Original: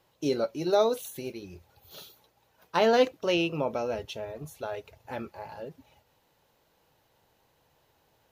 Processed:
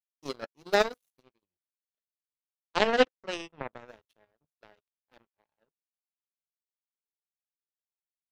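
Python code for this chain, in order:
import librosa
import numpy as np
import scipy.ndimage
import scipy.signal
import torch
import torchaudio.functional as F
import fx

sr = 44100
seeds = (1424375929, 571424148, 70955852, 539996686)

y = fx.lowpass(x, sr, hz=3200.0, slope=12, at=(1.23, 3.88))
y = fx.power_curve(y, sr, exponent=3.0)
y = y * 10.0 ** (7.5 / 20.0)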